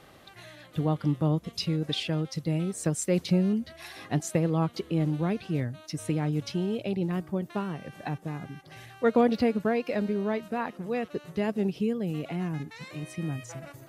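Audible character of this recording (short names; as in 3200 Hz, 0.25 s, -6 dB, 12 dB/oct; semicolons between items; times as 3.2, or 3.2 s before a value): noise floor -53 dBFS; spectral tilt -6.5 dB/oct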